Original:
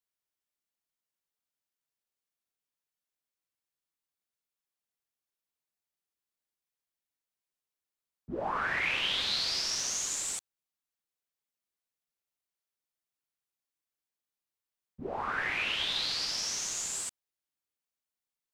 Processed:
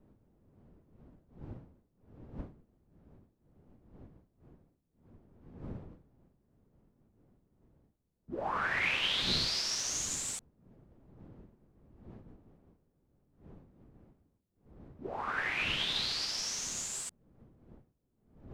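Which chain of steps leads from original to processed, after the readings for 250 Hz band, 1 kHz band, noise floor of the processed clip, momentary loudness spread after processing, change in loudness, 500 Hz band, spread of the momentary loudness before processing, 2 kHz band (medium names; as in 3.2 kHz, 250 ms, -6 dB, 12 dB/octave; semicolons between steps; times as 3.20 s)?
+2.0 dB, -1.5 dB, -78 dBFS, 21 LU, -2.0 dB, -1.5 dB, 10 LU, -1.0 dB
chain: wind noise 240 Hz -49 dBFS; upward expansion 1.5:1, over -42 dBFS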